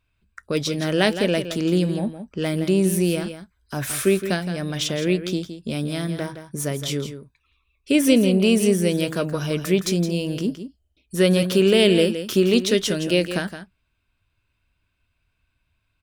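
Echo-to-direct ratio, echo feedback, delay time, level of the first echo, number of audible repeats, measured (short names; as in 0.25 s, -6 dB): -10.5 dB, no steady repeat, 0.166 s, -10.5 dB, 1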